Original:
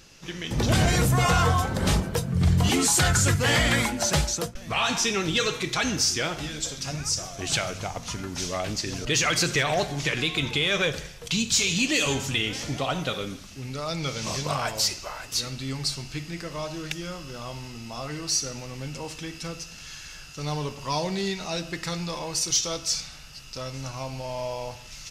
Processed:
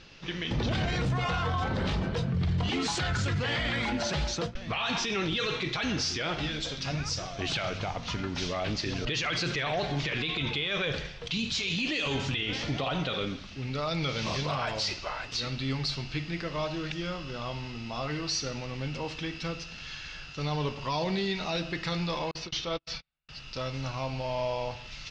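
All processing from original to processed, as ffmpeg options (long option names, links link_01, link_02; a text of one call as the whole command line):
ffmpeg -i in.wav -filter_complex "[0:a]asettb=1/sr,asplit=3[link_01][link_02][link_03];[link_01]atrim=end=22.314[link_04];[link_02]atrim=start=22.31:end=23.29,asetpts=PTS-STARTPTS,afade=type=in:duration=0.004:curve=qsin,afade=type=out:start_time=0.976:duration=0.004:curve=qsin,agate=range=-45dB:threshold=-31dB:ratio=16:release=100:detection=peak,lowpass=3300[link_05];[link_03]atrim=start=23.286[link_06];[link_04][link_05]acrossfade=duration=0.004:curve1=hsin:curve2=qsin[link_07];[link_07][link_06]acrossfade=duration=0.004:curve1=qsin:curve2=hsin,lowpass=frequency=4000:width=0.5412,lowpass=frequency=4000:width=1.3066,aemphasis=mode=production:type=cd,alimiter=limit=-23dB:level=0:latency=1:release=17,volume=1dB" out.wav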